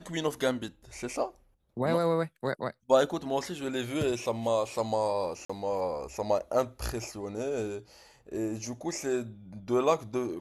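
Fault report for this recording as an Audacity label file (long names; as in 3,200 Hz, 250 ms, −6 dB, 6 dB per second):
5.450000	5.500000	drop-out 45 ms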